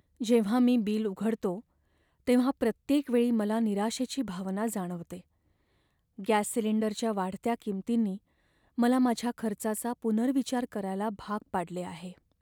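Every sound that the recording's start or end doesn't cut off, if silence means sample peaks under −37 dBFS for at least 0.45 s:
0:02.27–0:05.17
0:06.19–0:08.16

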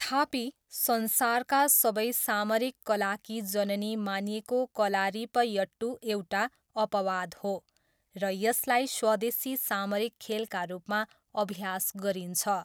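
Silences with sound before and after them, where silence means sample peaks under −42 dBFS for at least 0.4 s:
0:07.59–0:08.16

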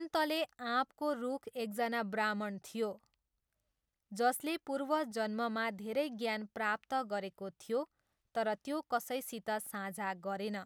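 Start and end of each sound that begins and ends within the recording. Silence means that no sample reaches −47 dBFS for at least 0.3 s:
0:04.12–0:07.84

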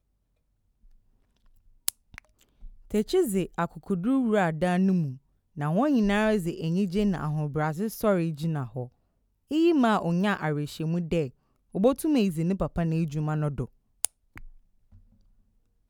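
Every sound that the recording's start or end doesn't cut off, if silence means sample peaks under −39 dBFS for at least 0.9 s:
0:01.88–0:14.46

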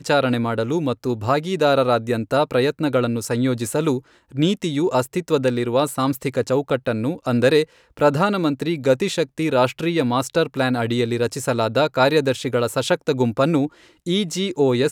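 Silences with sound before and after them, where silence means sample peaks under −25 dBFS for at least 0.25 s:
0:03.98–0:04.37
0:07.64–0:07.97
0:13.67–0:14.07

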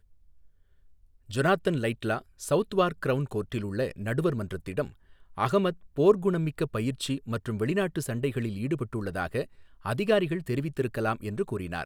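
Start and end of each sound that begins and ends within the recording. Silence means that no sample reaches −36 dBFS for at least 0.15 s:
0:01.30–0:02.19
0:02.41–0:04.88
0:05.38–0:05.73
0:05.98–0:09.44

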